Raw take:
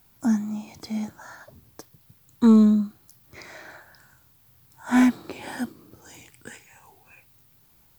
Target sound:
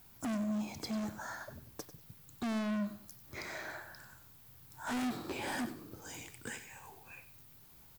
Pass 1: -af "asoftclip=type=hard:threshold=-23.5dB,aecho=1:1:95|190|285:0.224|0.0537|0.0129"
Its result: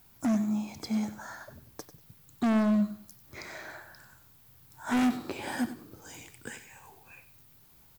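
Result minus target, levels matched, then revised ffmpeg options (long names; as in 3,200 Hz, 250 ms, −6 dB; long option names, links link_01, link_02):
hard clipping: distortion −5 dB
-af "asoftclip=type=hard:threshold=-34dB,aecho=1:1:95|190|285:0.224|0.0537|0.0129"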